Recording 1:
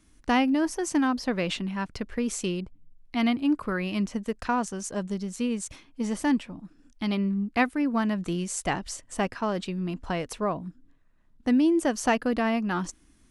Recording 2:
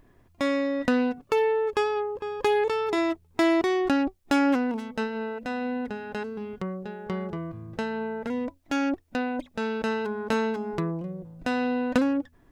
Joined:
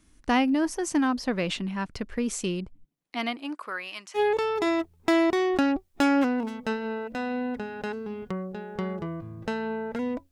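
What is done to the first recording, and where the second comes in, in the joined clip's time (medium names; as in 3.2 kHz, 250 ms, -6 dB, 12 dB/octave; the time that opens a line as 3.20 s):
recording 1
2.84–4.20 s: high-pass 230 Hz -> 1.4 kHz
4.17 s: go over to recording 2 from 2.48 s, crossfade 0.06 s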